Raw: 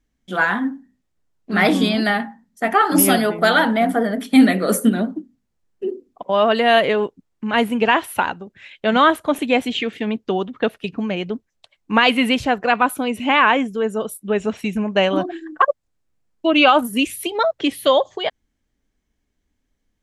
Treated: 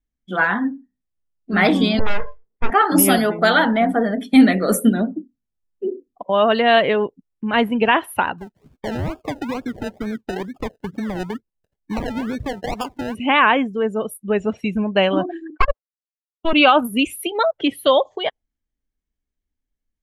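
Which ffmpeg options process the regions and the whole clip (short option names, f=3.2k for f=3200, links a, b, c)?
-filter_complex "[0:a]asettb=1/sr,asplit=3[a][b][c];[a]atrim=end=1.994[d];[b]atrim=start=1.99:end=2.7,asetpts=PTS-STARTPTS,afade=t=in:d=0.004:c=qsin,afade=t=out:st=0.706:d=0.004:c=qsin,lowpass=f=1.6k:w=0.5412,lowpass=f=1.6k:w=1.3066,aeval=exprs='abs(val(0))':c=same[e];[c]atrim=start=2.696[f];[d][e]acrossfade=d=0.004:c1=hsin:c2=qsin[g];[g][f]acrossfade=d=0.004:c1=qsin:c2=hsin,asettb=1/sr,asplit=3[h][i][j];[h]atrim=end=8.384[k];[i]atrim=start=8.38:end=13.15,asetpts=PTS-STARTPTS,afade=t=in:d=0.004:c=qsin,afade=t=out:st=4.766:d=0.004:c=qsin,lowpass=f=2k:w=0.5412,lowpass=f=2k:w=1.3066,acompressor=threshold=-21dB:ratio=12:attack=3.2:release=140:knee=1:detection=peak,acrusher=samples=31:mix=1:aa=0.000001:lfo=1:lforange=18.6:lforate=2.2[l];[j]atrim=start=13.146[m];[k][l]acrossfade=d=0.004:c1=hsin:c2=qsin[n];[n][m]acrossfade=d=0.004:c1=qsin:c2=hsin,asettb=1/sr,asplit=3[o][p][q];[o]atrim=end=15.504[r];[p]atrim=start=15.5:end=16.53,asetpts=PTS-STARTPTS,afade=t=in:d=0.004:c=qsin,afade=t=out:st=1.026:d=0.004:c=qsin,highpass=f=300:w=0.5412,highpass=f=300:w=1.3066,agate=range=-33dB:threshold=-37dB:ratio=3:release=100:detection=peak,aeval=exprs='clip(val(0),-1,0.0631)':c=same[s];[q]atrim=start=16.526[t];[r][s]acrossfade=d=0.004:c1=hsin:c2=qsin[u];[u][t]acrossfade=d=0.004:c1=qsin:c2=hsin,afftdn=nr=15:nf=-35,lowshelf=f=61:g=9.5"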